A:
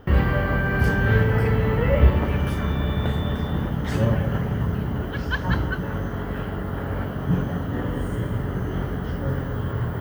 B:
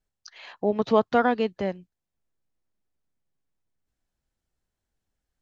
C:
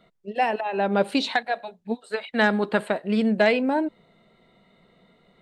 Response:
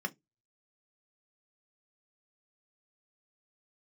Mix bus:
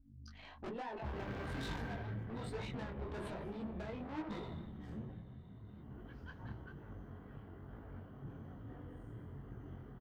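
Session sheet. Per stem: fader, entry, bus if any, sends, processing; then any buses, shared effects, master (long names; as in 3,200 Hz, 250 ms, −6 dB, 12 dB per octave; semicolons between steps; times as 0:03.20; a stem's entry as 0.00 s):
0:04.90 −6.5 dB → 0:05.33 −18 dB, 0.95 s, send −15 dB, notch filter 580 Hz, Q 12; automatic ducking −11 dB, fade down 0.60 s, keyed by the second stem
+3.0 dB, 0.00 s, muted 0:00.68–0:02.22, send −9.5 dB, low-pass filter 5,000 Hz; mains hum 50 Hz, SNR 20 dB; ring modulation 26 Hz
−8.0 dB, 0.40 s, no send, downward compressor 6 to 1, threshold −28 dBFS, peak gain reduction 13 dB; hollow resonant body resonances 320/960/3,600 Hz, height 11 dB, ringing for 20 ms; level that may fall only so fast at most 63 dB per second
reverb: on, RT60 0.15 s, pre-delay 3 ms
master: high-shelf EQ 2,700 Hz −9 dB; tube saturation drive 36 dB, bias 0.4; micro pitch shift up and down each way 40 cents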